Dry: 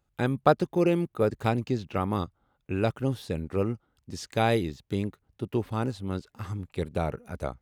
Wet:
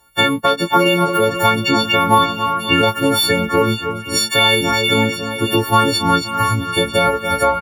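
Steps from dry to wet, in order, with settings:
every partial snapped to a pitch grid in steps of 4 semitones
low-shelf EQ 360 Hz −7.5 dB
on a send: echo with a time of its own for lows and highs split 2,500 Hz, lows 277 ms, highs 471 ms, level −14 dB
on the sum: dynamic equaliser 3,600 Hz, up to +6 dB, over −49 dBFS, Q 4
in parallel at −7.5 dB: sine wavefolder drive 4 dB, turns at −4.5 dBFS
on the sum: downward compressor 6 to 1, threshold −24 dBFS, peak gain reduction 14 dB
double-tracking delay 18 ms −5.5 dB
slap from a distant wall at 91 metres, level −16 dB
boost into a limiter +16 dB
auto-filter bell 2.8 Hz 830–3,500 Hz +7 dB
level −4.5 dB

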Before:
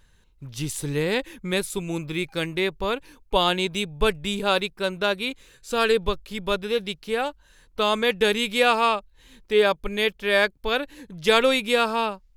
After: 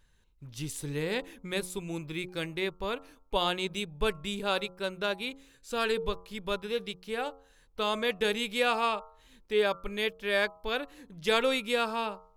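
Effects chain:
hum removal 90.83 Hz, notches 15
level −7.5 dB

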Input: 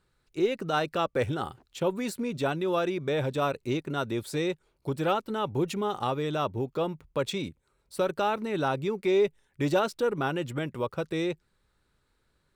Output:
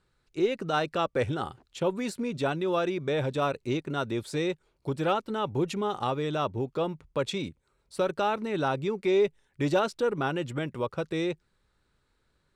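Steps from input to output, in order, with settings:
low-pass filter 9,300 Hz 12 dB per octave

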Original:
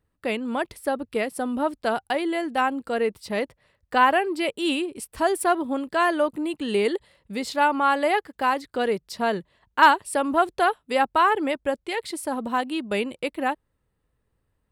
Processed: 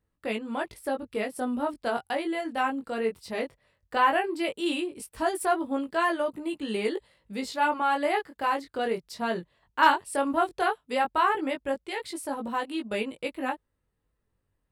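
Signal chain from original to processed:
chorus effect 0.16 Hz, delay 18 ms, depth 4.4 ms
level −1.5 dB

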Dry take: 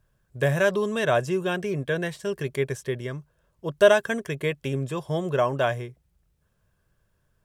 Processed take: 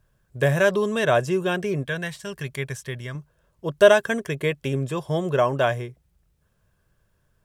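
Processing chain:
0:01.87–0:03.15: parametric band 380 Hz −10.5 dB 1.5 octaves
level +2.5 dB

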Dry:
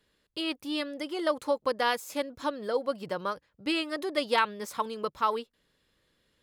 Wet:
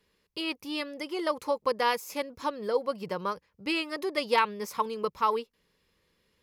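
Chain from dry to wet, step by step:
EQ curve with evenly spaced ripples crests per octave 0.82, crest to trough 6 dB

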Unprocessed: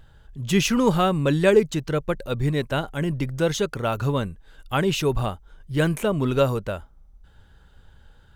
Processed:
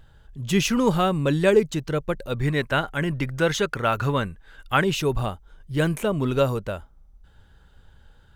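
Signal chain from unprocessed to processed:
0:02.34–0:04.84: parametric band 1,700 Hz +8 dB 1.6 octaves
level −1 dB

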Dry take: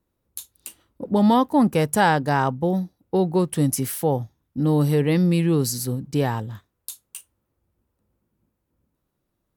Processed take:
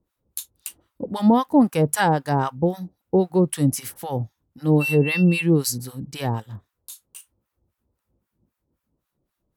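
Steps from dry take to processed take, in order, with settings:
0:04.80–0:05.41: steady tone 2,700 Hz −25 dBFS
two-band tremolo in antiphase 3.8 Hz, depth 100%, crossover 900 Hz
level +4 dB

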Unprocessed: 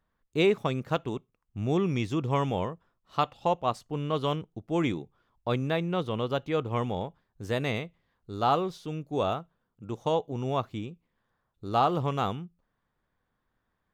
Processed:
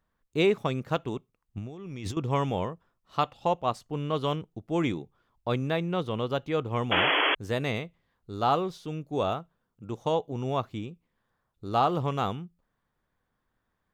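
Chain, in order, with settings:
0:01.57–0:02.17: compressor whose output falls as the input rises −38 dBFS, ratio −1
0:06.91–0:07.35: sound drawn into the spectrogram noise 270–3,400 Hz −24 dBFS

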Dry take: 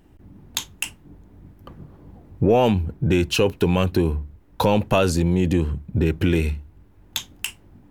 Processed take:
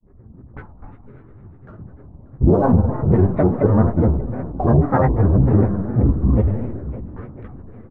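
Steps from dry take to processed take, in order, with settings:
gain on one half-wave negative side −7 dB
Butterworth low-pass 1,500 Hz 48 dB per octave
in parallel at −11.5 dB: dead-zone distortion −41 dBFS
on the sum: low-shelf EQ 440 Hz +6.5 dB
coupled-rooms reverb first 0.32 s, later 4.7 s, from −19 dB, DRR −3 dB
granular cloud, spray 10 ms, pitch spread up and down by 7 semitones
on a send: single-tap delay 586 ms −19.5 dB
on the sum: level −4 dB

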